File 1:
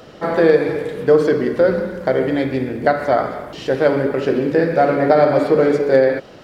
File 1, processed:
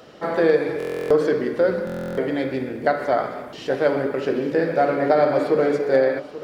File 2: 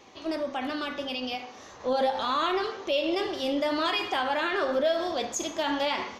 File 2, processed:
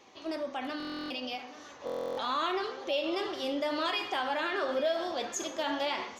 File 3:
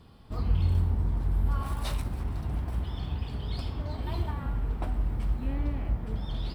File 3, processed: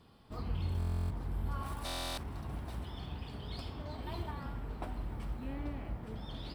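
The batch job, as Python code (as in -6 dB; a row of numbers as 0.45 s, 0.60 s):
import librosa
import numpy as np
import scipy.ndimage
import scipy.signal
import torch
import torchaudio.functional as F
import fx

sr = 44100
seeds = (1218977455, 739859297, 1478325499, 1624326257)

y = fx.low_shelf(x, sr, hz=120.0, db=-9.5)
y = y + 10.0 ** (-15.5 / 20.0) * np.pad(y, (int(834 * sr / 1000.0), 0))[:len(y)]
y = fx.buffer_glitch(y, sr, at_s=(0.78, 1.85), block=1024, repeats=13)
y = F.gain(torch.from_numpy(y), -4.0).numpy()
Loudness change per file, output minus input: -4.5 LU, -4.5 LU, -9.0 LU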